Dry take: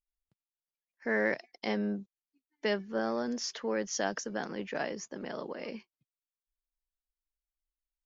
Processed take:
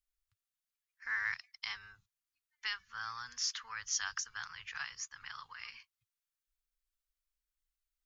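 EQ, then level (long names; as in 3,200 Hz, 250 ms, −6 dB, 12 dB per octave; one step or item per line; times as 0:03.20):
elliptic band-stop filter 100–1,200 Hz, stop band 40 dB
dynamic equaliser 1,900 Hz, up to −4 dB, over −48 dBFS, Q 1.4
+2.5 dB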